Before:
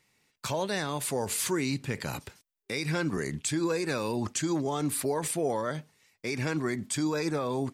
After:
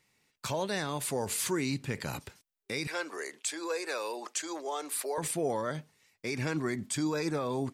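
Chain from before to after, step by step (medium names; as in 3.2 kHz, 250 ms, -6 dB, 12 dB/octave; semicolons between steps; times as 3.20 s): 2.87–5.18 s: high-pass 430 Hz 24 dB/octave; trim -2 dB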